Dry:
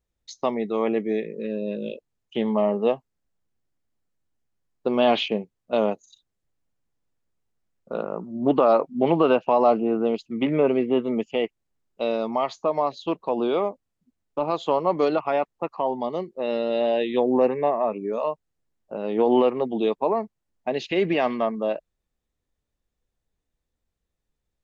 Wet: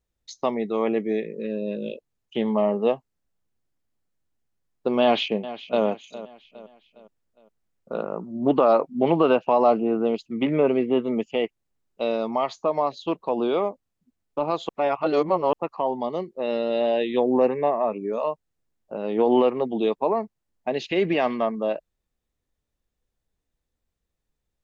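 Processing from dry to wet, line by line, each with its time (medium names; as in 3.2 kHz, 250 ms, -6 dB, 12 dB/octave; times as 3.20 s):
5.02–5.84 s: echo throw 410 ms, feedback 45%, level -15 dB
14.69–15.53 s: reverse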